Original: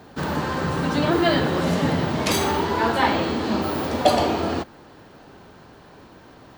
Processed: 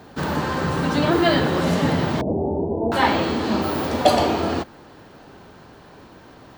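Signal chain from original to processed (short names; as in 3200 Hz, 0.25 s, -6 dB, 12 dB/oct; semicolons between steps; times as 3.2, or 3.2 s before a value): 2.21–2.92 steep low-pass 740 Hz 48 dB/oct; gain +1.5 dB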